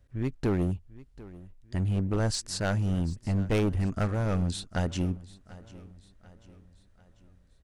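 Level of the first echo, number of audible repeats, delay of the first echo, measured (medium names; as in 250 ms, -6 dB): -19.5 dB, 3, 743 ms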